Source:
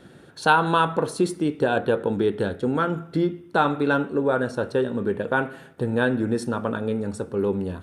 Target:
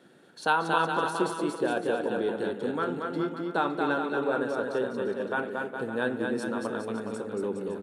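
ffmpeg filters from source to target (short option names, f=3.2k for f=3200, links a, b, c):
-filter_complex "[0:a]highpass=220,asplit=2[a][b];[b]aecho=0:1:230|414|561.2|679|773.2:0.631|0.398|0.251|0.158|0.1[c];[a][c]amix=inputs=2:normalize=0,volume=-7dB"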